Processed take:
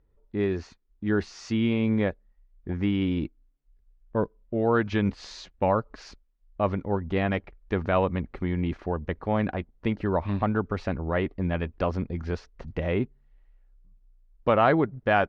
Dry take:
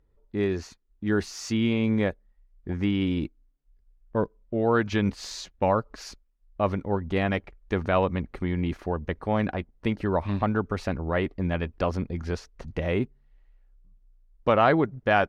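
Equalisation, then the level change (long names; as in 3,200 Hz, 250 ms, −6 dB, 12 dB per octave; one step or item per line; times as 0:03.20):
high-frequency loss of the air 130 metres
0.0 dB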